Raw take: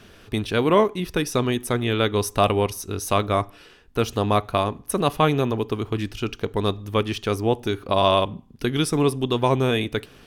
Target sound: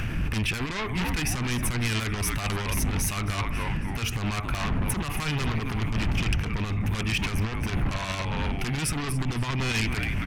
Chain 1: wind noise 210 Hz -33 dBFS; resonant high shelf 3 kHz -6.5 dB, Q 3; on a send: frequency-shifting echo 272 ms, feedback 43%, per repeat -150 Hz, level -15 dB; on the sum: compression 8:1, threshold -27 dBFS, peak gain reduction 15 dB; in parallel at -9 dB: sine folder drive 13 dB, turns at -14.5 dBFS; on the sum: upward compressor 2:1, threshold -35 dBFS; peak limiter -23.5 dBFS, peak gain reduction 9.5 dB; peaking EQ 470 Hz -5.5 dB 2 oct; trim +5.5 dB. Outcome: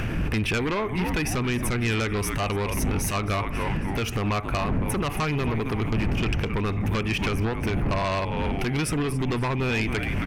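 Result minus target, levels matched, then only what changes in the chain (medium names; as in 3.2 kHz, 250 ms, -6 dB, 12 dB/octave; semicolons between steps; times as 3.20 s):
500 Hz band +6.5 dB; compression: peak gain reduction +5.5 dB
change: compression 8:1, threshold -21 dBFS, peak gain reduction 10 dB; change: peaking EQ 470 Hz -14 dB 2 oct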